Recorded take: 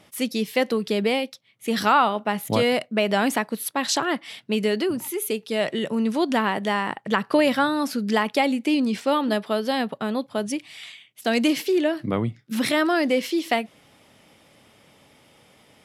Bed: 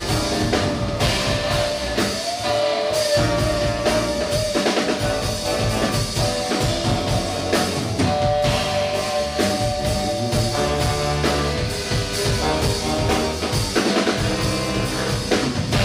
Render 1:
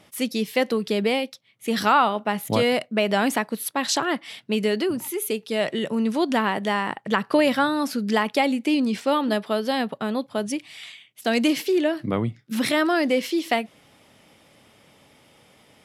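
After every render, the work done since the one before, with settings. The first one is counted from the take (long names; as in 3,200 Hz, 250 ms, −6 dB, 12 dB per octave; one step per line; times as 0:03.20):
no processing that can be heard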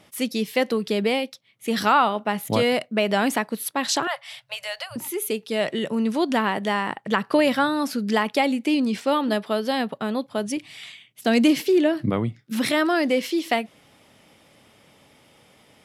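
0:04.07–0:04.96: Chebyshev band-stop filter 140–540 Hz, order 5
0:10.57–0:12.10: low-shelf EQ 240 Hz +9 dB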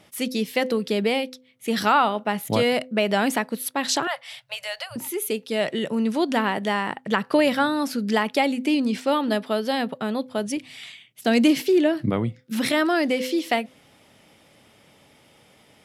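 parametric band 1,100 Hz −2.5 dB 0.23 octaves
hum removal 255.5 Hz, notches 2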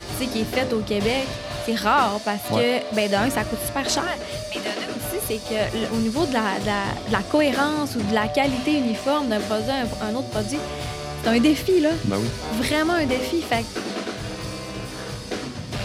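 mix in bed −10 dB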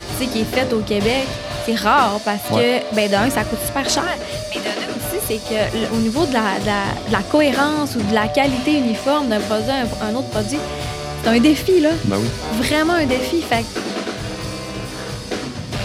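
level +4.5 dB
brickwall limiter −2 dBFS, peak gain reduction 1 dB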